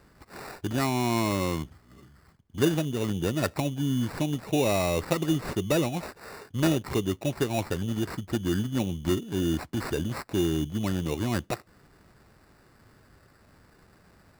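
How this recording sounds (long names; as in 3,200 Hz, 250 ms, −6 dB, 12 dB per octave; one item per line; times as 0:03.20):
aliases and images of a low sample rate 3,200 Hz, jitter 0%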